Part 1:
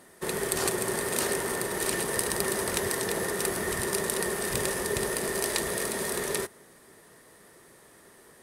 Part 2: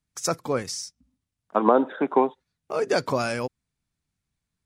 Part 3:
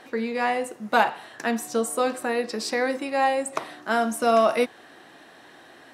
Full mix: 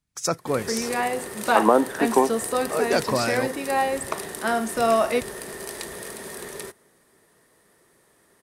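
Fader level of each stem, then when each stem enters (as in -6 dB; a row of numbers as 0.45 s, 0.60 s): -6.0 dB, +1.0 dB, -1.0 dB; 0.25 s, 0.00 s, 0.55 s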